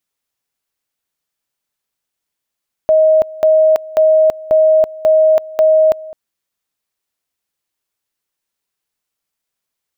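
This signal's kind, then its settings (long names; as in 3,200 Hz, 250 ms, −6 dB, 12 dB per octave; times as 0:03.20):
tone at two levels in turn 629 Hz −6.5 dBFS, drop 20.5 dB, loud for 0.33 s, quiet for 0.21 s, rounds 6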